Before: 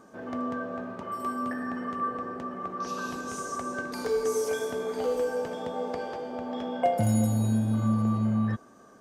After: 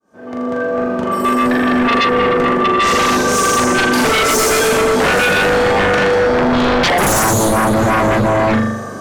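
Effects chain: fade-in on the opening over 2.03 s; flutter echo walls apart 7 m, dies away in 0.86 s; sine folder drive 16 dB, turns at -12.5 dBFS; trim +2.5 dB

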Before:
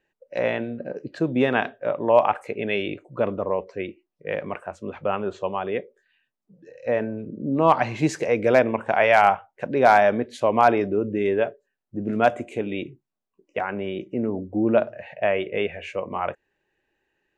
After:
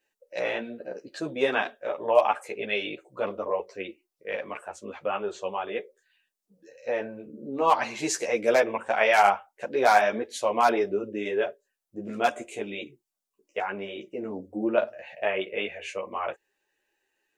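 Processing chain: tone controls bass -13 dB, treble +12 dB; three-phase chorus

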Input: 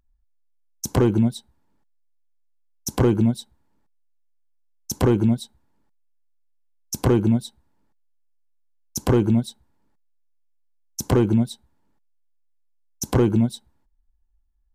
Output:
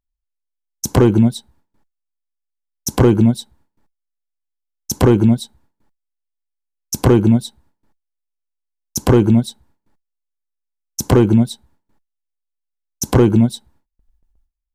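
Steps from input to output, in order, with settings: gate with hold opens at -57 dBFS; trim +6.5 dB

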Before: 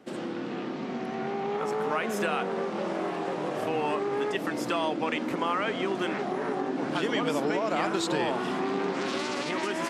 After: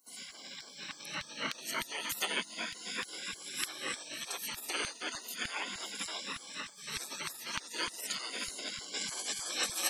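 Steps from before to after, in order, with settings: drifting ripple filter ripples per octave 2, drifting +0.35 Hz, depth 18 dB; high-pass 50 Hz; peak limiter -17 dBFS, peak gain reduction 5.5 dB; 0.91–2.97 s: bass shelf 320 Hz +9 dB; 6.27–7.92 s: time-frequency box 860–2300 Hz -7 dB; LFO high-pass saw down 3.3 Hz 570–3200 Hz; spectral gate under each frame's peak -25 dB weak; treble shelf 11 kHz +9.5 dB; trim +7 dB

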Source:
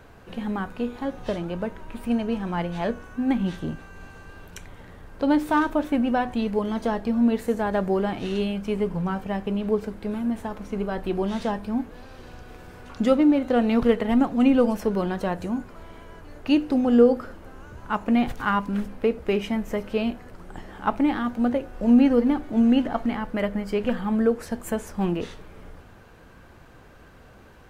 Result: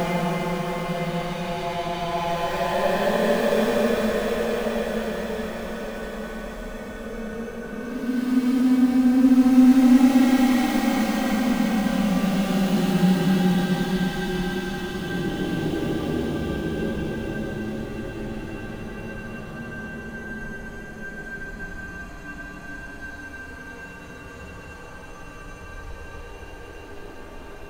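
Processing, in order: chunks repeated in reverse 131 ms, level -14 dB; in parallel at -11 dB: integer overflow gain 19.5 dB; on the sum: flutter echo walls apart 4.7 m, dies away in 0.74 s; Paulstretch 16×, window 0.10 s, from 2.67 s

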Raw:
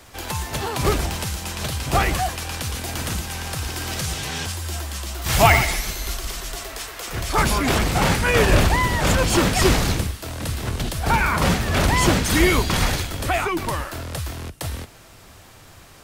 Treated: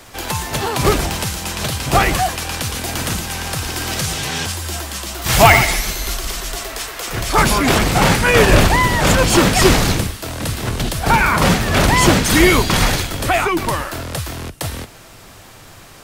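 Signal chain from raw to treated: peaking EQ 68 Hz -8.5 dB 0.54 oct; hard clipper -7.5 dBFS, distortion -28 dB; trim +6 dB

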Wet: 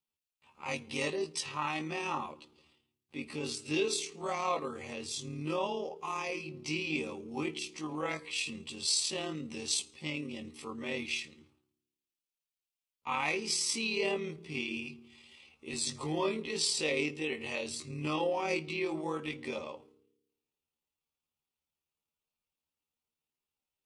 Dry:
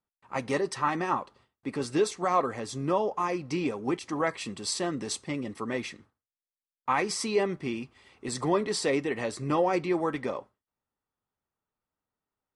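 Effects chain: resonant high shelf 2.1 kHz +6.5 dB, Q 3; band-stop 670 Hz, Q 12; de-hum 59.39 Hz, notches 8; granular stretch 1.9×, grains 55 ms; trim -5.5 dB

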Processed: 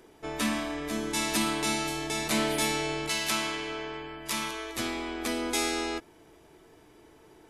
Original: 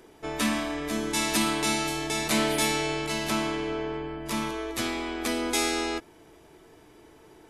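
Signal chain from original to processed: 3.09–4.76 s: tilt shelf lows -6.5 dB; trim -2.5 dB

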